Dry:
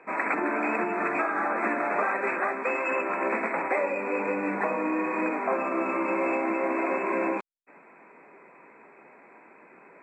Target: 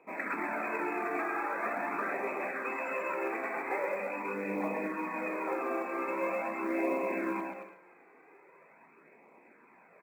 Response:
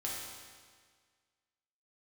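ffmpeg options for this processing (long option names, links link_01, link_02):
-filter_complex "[0:a]aecho=1:1:130|221|284.7|329.3|360.5:0.631|0.398|0.251|0.158|0.1,flanger=delay=0.3:depth=2.3:regen=-20:speed=0.43:shape=sinusoidal,asplit=2[link_01][link_02];[1:a]atrim=start_sample=2205,asetrate=38808,aresample=44100[link_03];[link_02][link_03]afir=irnorm=-1:irlink=0,volume=-15dB[link_04];[link_01][link_04]amix=inputs=2:normalize=0,acrusher=bits=8:mode=log:mix=0:aa=0.000001,volume=-6.5dB"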